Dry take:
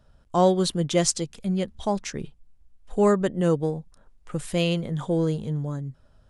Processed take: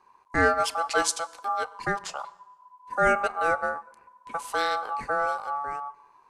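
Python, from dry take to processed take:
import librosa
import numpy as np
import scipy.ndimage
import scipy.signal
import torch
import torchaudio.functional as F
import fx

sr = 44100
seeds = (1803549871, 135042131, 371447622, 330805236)

y = fx.rev_fdn(x, sr, rt60_s=1.1, lf_ratio=0.95, hf_ratio=0.85, size_ms=77.0, drr_db=17.0)
y = y * np.sin(2.0 * np.pi * 1000.0 * np.arange(len(y)) / sr)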